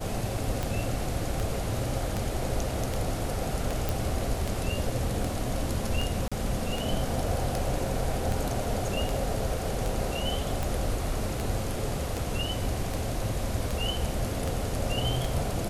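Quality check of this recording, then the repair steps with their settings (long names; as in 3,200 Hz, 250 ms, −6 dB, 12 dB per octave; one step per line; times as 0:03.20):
scratch tick 78 rpm
0:03.89: click
0:06.28–0:06.32: drop-out 36 ms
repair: click removal
repair the gap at 0:06.28, 36 ms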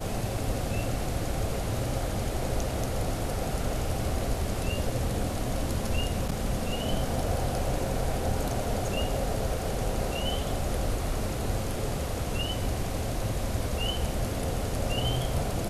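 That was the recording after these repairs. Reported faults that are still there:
none of them is left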